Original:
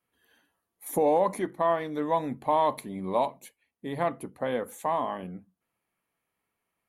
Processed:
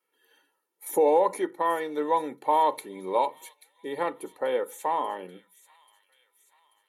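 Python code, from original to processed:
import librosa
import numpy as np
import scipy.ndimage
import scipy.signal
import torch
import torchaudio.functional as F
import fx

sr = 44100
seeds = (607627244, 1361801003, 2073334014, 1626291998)

y = scipy.signal.sosfilt(scipy.signal.butter(4, 220.0, 'highpass', fs=sr, output='sos'), x)
y = y + 0.69 * np.pad(y, (int(2.2 * sr / 1000.0), 0))[:len(y)]
y = fx.echo_wet_highpass(y, sr, ms=835, feedback_pct=51, hz=3100.0, wet_db=-13)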